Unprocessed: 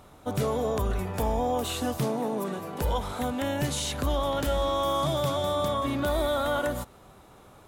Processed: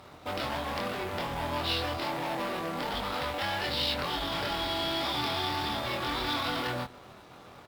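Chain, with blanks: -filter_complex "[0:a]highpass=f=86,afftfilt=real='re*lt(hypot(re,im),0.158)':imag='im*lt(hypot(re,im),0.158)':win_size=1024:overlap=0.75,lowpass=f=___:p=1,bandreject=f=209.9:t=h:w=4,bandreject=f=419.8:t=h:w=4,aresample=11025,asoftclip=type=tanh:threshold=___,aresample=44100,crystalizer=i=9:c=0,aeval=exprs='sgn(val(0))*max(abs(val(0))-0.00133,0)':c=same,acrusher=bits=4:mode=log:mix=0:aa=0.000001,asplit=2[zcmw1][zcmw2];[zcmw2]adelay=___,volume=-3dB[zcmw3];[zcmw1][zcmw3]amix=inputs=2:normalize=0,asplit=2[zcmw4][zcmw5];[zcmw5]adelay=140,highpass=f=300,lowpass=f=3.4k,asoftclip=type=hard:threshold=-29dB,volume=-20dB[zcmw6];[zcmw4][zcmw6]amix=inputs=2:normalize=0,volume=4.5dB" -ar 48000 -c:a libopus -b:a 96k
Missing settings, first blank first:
1k, -38.5dB, 24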